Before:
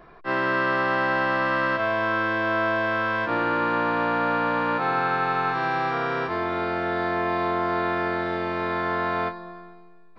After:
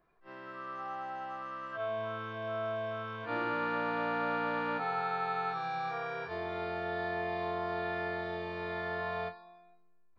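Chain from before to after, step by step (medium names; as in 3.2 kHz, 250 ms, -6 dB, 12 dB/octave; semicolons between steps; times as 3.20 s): spectral noise reduction 15 dB; reverse echo 36 ms -13.5 dB; trim -8.5 dB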